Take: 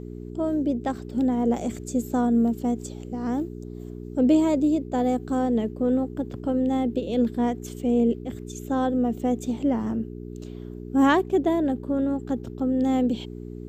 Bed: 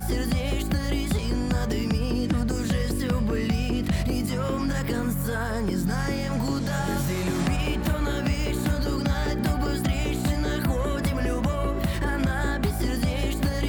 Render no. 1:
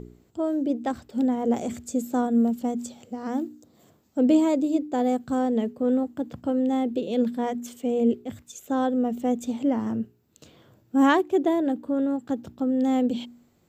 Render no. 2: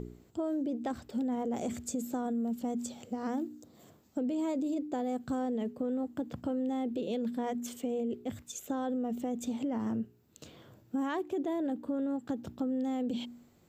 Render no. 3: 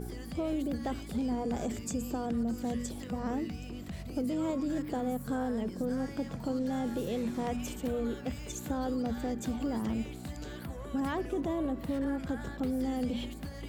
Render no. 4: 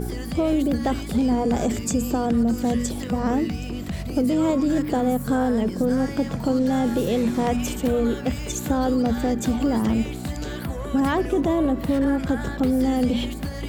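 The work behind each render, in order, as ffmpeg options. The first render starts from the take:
-af "bandreject=f=60:t=h:w=4,bandreject=f=120:t=h:w=4,bandreject=f=180:t=h:w=4,bandreject=f=240:t=h:w=4,bandreject=f=300:t=h:w=4,bandreject=f=360:t=h:w=4,bandreject=f=420:t=h:w=4"
-af "alimiter=limit=0.0891:level=0:latency=1:release=12,acompressor=threshold=0.0224:ratio=2.5"
-filter_complex "[1:a]volume=0.15[s0];[0:a][s0]amix=inputs=2:normalize=0"
-af "volume=3.76"

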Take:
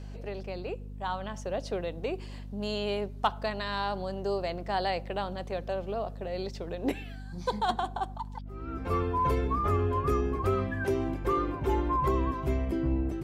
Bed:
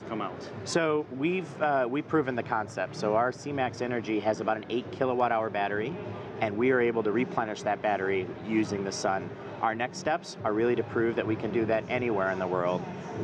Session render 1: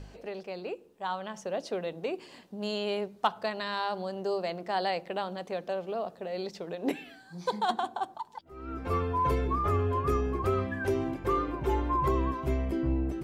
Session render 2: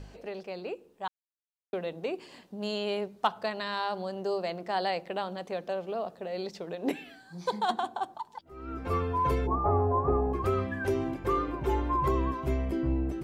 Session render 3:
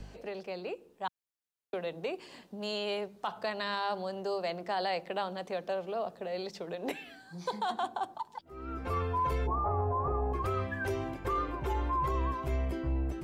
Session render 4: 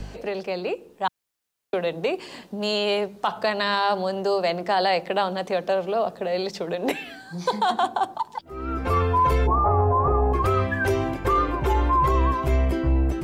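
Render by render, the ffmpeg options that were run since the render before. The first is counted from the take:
-af "bandreject=f=50:t=h:w=4,bandreject=f=100:t=h:w=4,bandreject=f=150:t=h:w=4,bandreject=f=200:t=h:w=4,bandreject=f=250:t=h:w=4,bandreject=f=300:t=h:w=4,bandreject=f=350:t=h:w=4"
-filter_complex "[0:a]asplit=3[s0][s1][s2];[s0]afade=t=out:st=9.46:d=0.02[s3];[s1]lowpass=f=810:t=q:w=5.6,afade=t=in:st=9.46:d=0.02,afade=t=out:st=10.32:d=0.02[s4];[s2]afade=t=in:st=10.32:d=0.02[s5];[s3][s4][s5]amix=inputs=3:normalize=0,asplit=3[s6][s7][s8];[s6]atrim=end=1.08,asetpts=PTS-STARTPTS,afade=t=out:st=1.076:d=0.004:c=hsin[s9];[s7]atrim=start=1.08:end=1.73,asetpts=PTS-STARTPTS,volume=0[s10];[s8]atrim=start=1.73,asetpts=PTS-STARTPTS,afade=t=in:d=0.004:c=hsin[s11];[s9][s10][s11]concat=n=3:v=0:a=1"
-filter_complex "[0:a]acrossover=split=130|440|3000[s0][s1][s2][s3];[s1]acompressor=threshold=0.00708:ratio=6[s4];[s0][s4][s2][s3]amix=inputs=4:normalize=0,alimiter=limit=0.0668:level=0:latency=1:release=18"
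-af "volume=3.55"

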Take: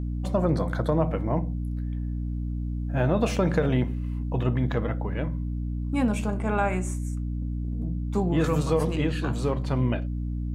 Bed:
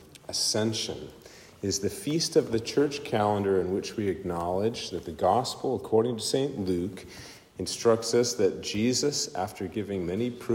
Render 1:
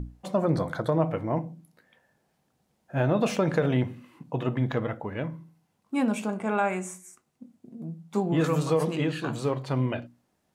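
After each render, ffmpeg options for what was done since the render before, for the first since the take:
-af "bandreject=f=60:t=h:w=6,bandreject=f=120:t=h:w=6,bandreject=f=180:t=h:w=6,bandreject=f=240:t=h:w=6,bandreject=f=300:t=h:w=6"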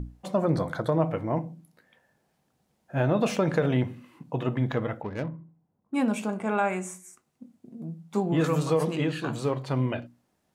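-filter_complex "[0:a]asettb=1/sr,asplit=3[s0][s1][s2];[s0]atrim=end=5.024[s3];[s1]atrim=start=5.02:end=5.94,asetpts=PTS-STARTPTS,afade=t=in:d=0.004:c=qsin,afade=t=out:st=0.916:d=0.004:c=qsin,adynamicsmooth=sensitivity=5.5:basefreq=840[s4];[s2]atrim=start=5.936[s5];[s3][s4]acrossfade=d=0.004:c1=hsin:c2=qsin[s6];[s6][s5]acrossfade=d=0.004:c1=qsin:c2=hsin"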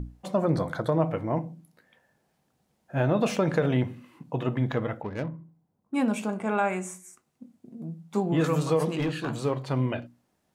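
-filter_complex "[0:a]asettb=1/sr,asplit=3[s0][s1][s2];[s0]atrim=end=8.954[s3];[s1]atrim=start=8.95:end=9.42,asetpts=PTS-STARTPTS,afade=t=in:d=0.004:c=qsin,afade=t=out:st=0.466:d=0.004:c=qsin,asoftclip=type=hard:threshold=0.0708[s4];[s2]atrim=start=9.416[s5];[s3][s4]acrossfade=d=0.004:c1=hsin:c2=qsin[s6];[s6][s5]acrossfade=d=0.004:c1=qsin:c2=hsin"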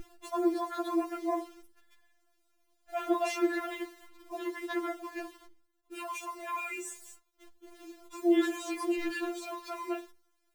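-af "acrusher=bits=9:dc=4:mix=0:aa=0.000001,afftfilt=real='re*4*eq(mod(b,16),0)':imag='im*4*eq(mod(b,16),0)':win_size=2048:overlap=0.75"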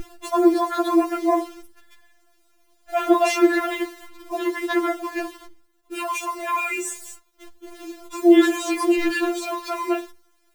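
-af "volume=3.98"

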